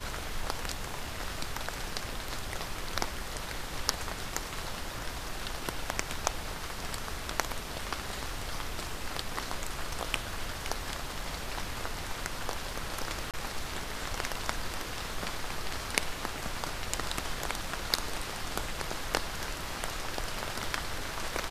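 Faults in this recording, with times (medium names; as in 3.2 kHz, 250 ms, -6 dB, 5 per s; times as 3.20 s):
13.31–13.34 s: dropout 27 ms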